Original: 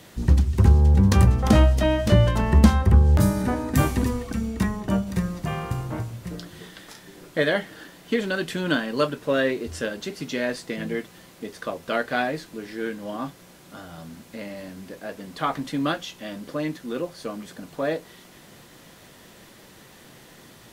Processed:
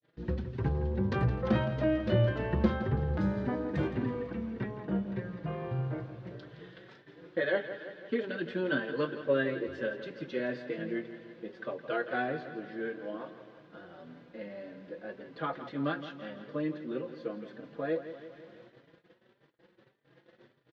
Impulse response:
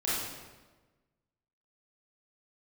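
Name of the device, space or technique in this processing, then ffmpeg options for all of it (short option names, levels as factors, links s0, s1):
barber-pole flanger into a guitar amplifier: -filter_complex "[0:a]asettb=1/sr,asplit=3[s0][s1][s2];[s0]atrim=end=3.874[s3];[s1]atrim=start=3.87:end=5.84,asetpts=PTS-STARTPTS,afade=t=in:d=0.004:c=qsin,afade=t=out:st=1.966:d=0.004:c=qsin,acrossover=split=4200[s4][s5];[s5]acompressor=threshold=0.002:ratio=4:attack=1:release=60[s6];[s4][s6]amix=inputs=2:normalize=0[s7];[s2]atrim=start=5.836[s8];[s3][s7]acrossfade=d=0.004:c1=hsin:c2=qsin[s9];[s9][s8]acrossfade=d=0.004:c1=qsin:c2=hsin,highshelf=f=3200:g=-2,asplit=2[s10][s11];[s11]adelay=4.6,afreqshift=1.7[s12];[s10][s12]amix=inputs=2:normalize=1,asoftclip=type=tanh:threshold=0.398,highpass=84,equalizer=f=89:t=q:w=4:g=-10,equalizer=f=130:t=q:w=4:g=9,equalizer=f=350:t=q:w=4:g=8,equalizer=f=510:t=q:w=4:g=9,equalizer=f=1600:t=q:w=4:g=6,lowpass=f=4000:w=0.5412,lowpass=f=4000:w=1.3066,aecho=1:1:166|332|498|664|830|996|1162:0.251|0.151|0.0904|0.0543|0.0326|0.0195|0.0117,agate=range=0.00708:threshold=0.00501:ratio=16:detection=peak,volume=0.376"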